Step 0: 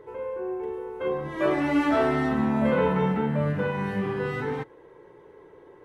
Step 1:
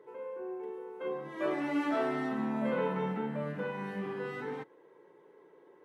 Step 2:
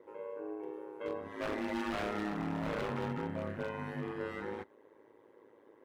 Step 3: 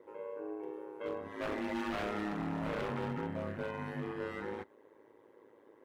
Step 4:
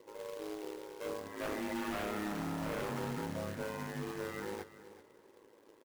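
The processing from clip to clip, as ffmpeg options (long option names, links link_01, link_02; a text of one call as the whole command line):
ffmpeg -i in.wav -af "highpass=frequency=170:width=0.5412,highpass=frequency=170:width=1.3066,volume=-8.5dB" out.wav
ffmpeg -i in.wav -af "aeval=exprs='0.0355*(abs(mod(val(0)/0.0355+3,4)-2)-1)':channel_layout=same,aeval=exprs='val(0)*sin(2*PI*53*n/s)':channel_layout=same,volume=1dB" out.wav
ffmpeg -i in.wav -af "volume=31dB,asoftclip=hard,volume=-31dB" out.wav
ffmpeg -i in.wav -af "acrusher=bits=2:mode=log:mix=0:aa=0.000001,aecho=1:1:380|760|1140:0.178|0.0427|0.0102,volume=-1.5dB" out.wav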